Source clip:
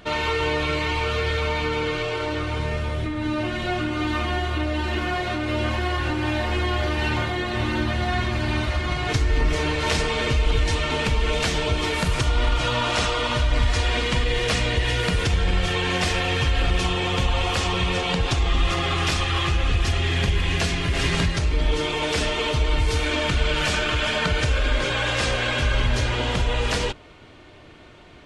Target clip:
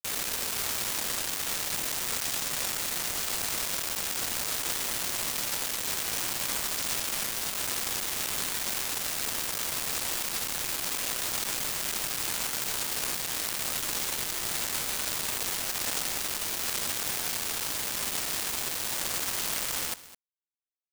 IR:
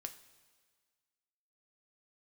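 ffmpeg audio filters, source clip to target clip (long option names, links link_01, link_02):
-af "alimiter=limit=-16dB:level=0:latency=1:release=48,lowshelf=frequency=220:gain=6,aresample=16000,aeval=exprs='(mod(15*val(0)+1,2)-1)/15':channel_layout=same,aresample=44100,asetrate=59535,aresample=44100,acrusher=bits=3:mix=0:aa=0.000001,aecho=1:1:209:0.141"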